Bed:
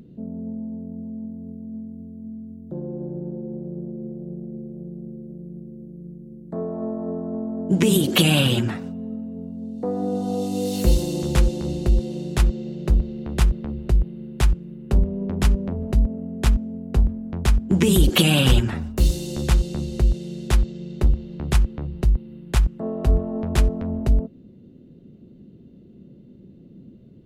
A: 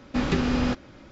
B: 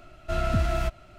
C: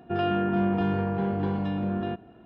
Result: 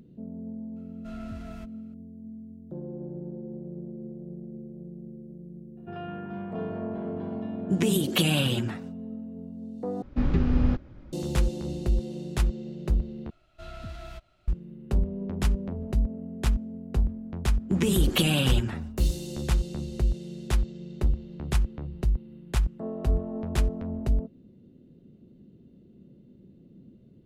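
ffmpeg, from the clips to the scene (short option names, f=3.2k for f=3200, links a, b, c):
-filter_complex "[2:a]asplit=2[a][b];[1:a]asplit=2[c][d];[0:a]volume=-6.5dB[e];[3:a]acrossover=split=3100[f][g];[g]acompressor=threshold=-55dB:ratio=4:attack=1:release=60[h];[f][h]amix=inputs=2:normalize=0[i];[c]aemphasis=mode=reproduction:type=riaa[j];[b]equalizer=f=3.8k:t=o:w=0.74:g=7[k];[d]lowpass=f=1.2k:p=1[l];[e]asplit=3[m][n][o];[m]atrim=end=10.024[p];[j]atrim=end=1.11,asetpts=PTS-STARTPTS,volume=-9dB[q];[n]atrim=start=11.126:end=13.304[r];[k]atrim=end=1.18,asetpts=PTS-STARTPTS,volume=-15.5dB[s];[o]atrim=start=14.476[t];[a]atrim=end=1.18,asetpts=PTS-STARTPTS,volume=-17.5dB,afade=t=in:d=0.004:c=hsin,afade=t=out:st=1.176:d=0.004:c=hsin,adelay=760[u];[i]atrim=end=2.45,asetpts=PTS-STARTPTS,volume=-12dB,afade=t=in:d=0.004:c=hsin,afade=t=out:st=2.446:d=0.004:c=hsin,adelay=254457S[v];[l]atrim=end=1.11,asetpts=PTS-STARTPTS,volume=-15dB,afade=t=in:d=0.004:c=hsin,afade=t=out:st=1.106:d=0.004:c=hsin,adelay=17600[w];[p][q]acrossfade=d=0.004:c1=hsin:c2=hsin[x];[x][r]acrossfade=d=0.004:c1=hsin:c2=hsin[y];[y][s]acrossfade=d=0.004:c1=hsin:c2=hsin[z];[z][t]acrossfade=d=0.004:c1=hsin:c2=hsin[aa];[aa][u][v][w]amix=inputs=4:normalize=0"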